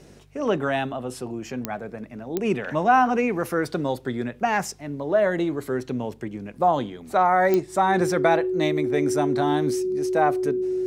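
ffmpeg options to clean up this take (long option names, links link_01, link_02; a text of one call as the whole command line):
ffmpeg -i in.wav -af "adeclick=threshold=4,bandreject=frequency=49.2:width_type=h:width=4,bandreject=frequency=98.4:width_type=h:width=4,bandreject=frequency=147.6:width_type=h:width=4,bandreject=frequency=370:width=30" out.wav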